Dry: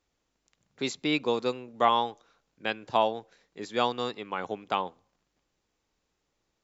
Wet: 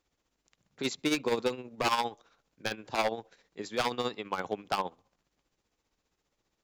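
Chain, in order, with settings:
wave folding −20.5 dBFS
amplitude tremolo 15 Hz, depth 59%
level +2 dB

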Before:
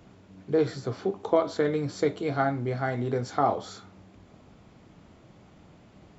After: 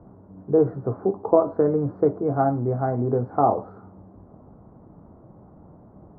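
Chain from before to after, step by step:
inverse Chebyshev low-pass filter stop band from 2,800 Hz, stop band 50 dB
level +5.5 dB

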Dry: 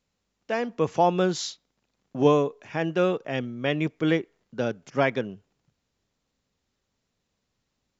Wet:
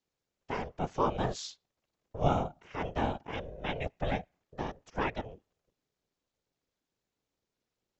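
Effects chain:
random phases in short frames
ring modulation 280 Hz
level −6 dB

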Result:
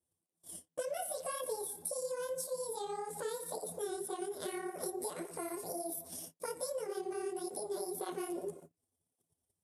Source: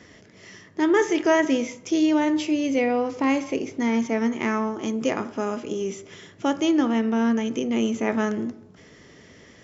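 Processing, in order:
pitch shift by two crossfaded delay taps +9 semitones
noise gate −45 dBFS, range −37 dB
drawn EQ curve 110 Hz 0 dB, 180 Hz −8 dB, 3,100 Hz −23 dB, 5,100 Hz −13 dB, 8,000 Hz +2 dB
downward compressor 6 to 1, threshold −45 dBFS, peak gain reduction 14 dB
through-zero flanger with one copy inverted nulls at 1.8 Hz, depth 7.5 ms
level +11 dB

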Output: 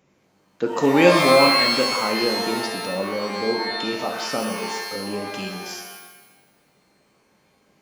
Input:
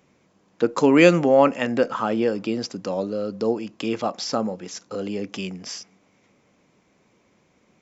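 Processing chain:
0:03.29–0:03.72: elliptic low-pass filter 710 Hz
reverb with rising layers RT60 1 s, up +12 semitones, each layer −2 dB, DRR 3 dB
level −3 dB

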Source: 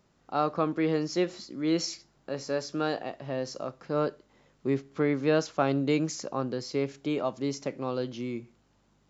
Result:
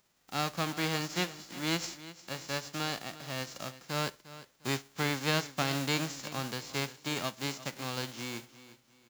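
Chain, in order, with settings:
spectral envelope flattened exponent 0.3
repeating echo 352 ms, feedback 32%, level −16 dB
level −5.5 dB

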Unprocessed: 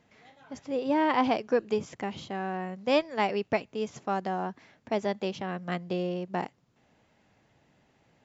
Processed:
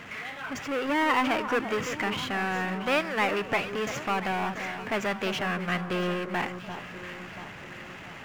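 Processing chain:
power curve on the samples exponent 0.5
flat-topped bell 1,800 Hz +9.5 dB
delay that swaps between a low-pass and a high-pass 343 ms, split 1,400 Hz, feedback 72%, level −9 dB
level −7.5 dB

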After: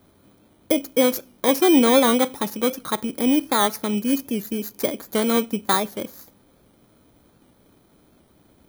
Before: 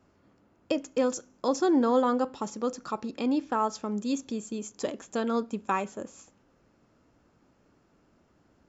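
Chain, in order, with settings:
samples in bit-reversed order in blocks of 16 samples
wow of a warped record 78 rpm, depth 100 cents
level +8 dB

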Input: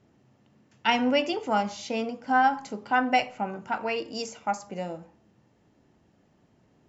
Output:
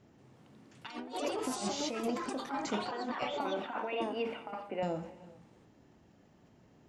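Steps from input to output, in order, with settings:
0:03.39–0:04.83: elliptic band-pass filter 250–2,800 Hz, stop band 40 dB
compressor whose output falls as the input rises −32 dBFS, ratio −0.5
delay with pitch and tempo change per echo 183 ms, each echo +4 semitones, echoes 2
on a send at −18.5 dB: convolution reverb, pre-delay 3 ms
on the sum: level that may fall only so fast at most 90 dB per second
level −5.5 dB

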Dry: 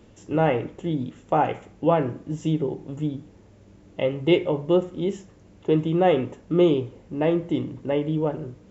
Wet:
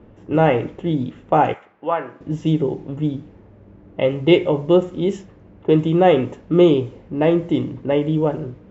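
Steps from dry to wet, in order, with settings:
low-pass that shuts in the quiet parts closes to 1,500 Hz, open at −19 dBFS
0:01.54–0:02.21: resonant band-pass 1,400 Hz, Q 1.1
level +5.5 dB

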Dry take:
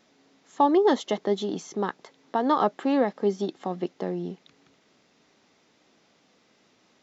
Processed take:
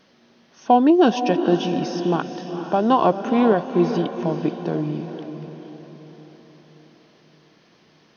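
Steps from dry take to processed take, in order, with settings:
speed change −14%
on a send: feedback delay with all-pass diffusion 460 ms, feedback 50%, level −9 dB
on the sum: level +5.5 dB

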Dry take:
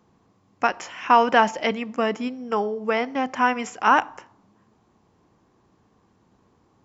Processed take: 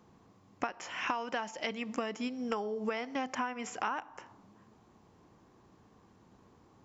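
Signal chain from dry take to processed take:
0:01.07–0:03.35: high-shelf EQ 3,300 Hz +9 dB
downward compressor 20 to 1, threshold −31 dBFS, peak gain reduction 22.5 dB

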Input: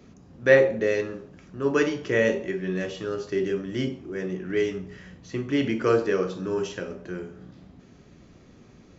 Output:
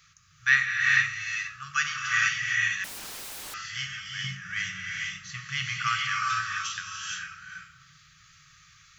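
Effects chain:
linear-phase brick-wall band-stop 160–1,100 Hz
bass and treble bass −15 dB, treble +5 dB
reverb whose tail is shaped and stops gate 490 ms rising, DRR −1.5 dB
0:02.84–0:03.54: wrap-around overflow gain 37.5 dB
hum removal 60.79 Hz, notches 14
0:04.24–0:05.89: parametric band 240 Hz +12 dB 2.1 octaves
level +2.5 dB

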